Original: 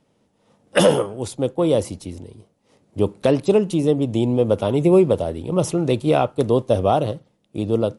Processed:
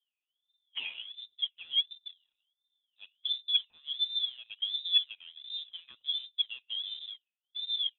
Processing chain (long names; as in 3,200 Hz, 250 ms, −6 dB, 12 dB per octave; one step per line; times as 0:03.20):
LFO wah 1.4 Hz 210–1,300 Hz, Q 13
leveller curve on the samples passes 1
voice inversion scrambler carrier 3,800 Hz
level −6 dB